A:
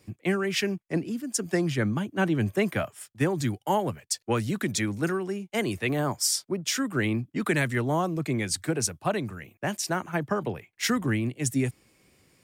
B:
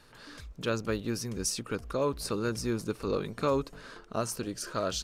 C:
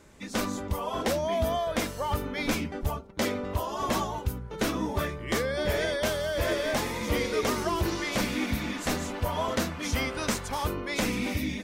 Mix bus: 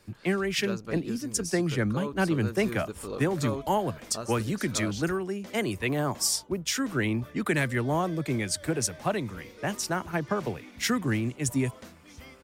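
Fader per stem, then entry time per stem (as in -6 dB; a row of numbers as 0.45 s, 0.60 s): -1.0 dB, -6.0 dB, -19.0 dB; 0.00 s, 0.00 s, 2.25 s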